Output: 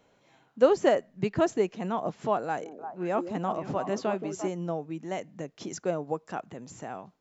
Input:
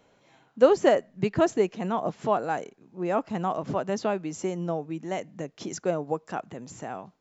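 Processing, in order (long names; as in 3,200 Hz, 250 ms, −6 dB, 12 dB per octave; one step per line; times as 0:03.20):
0:02.44–0:04.48: echo through a band-pass that steps 173 ms, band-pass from 330 Hz, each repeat 1.4 octaves, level −3.5 dB
level −2.5 dB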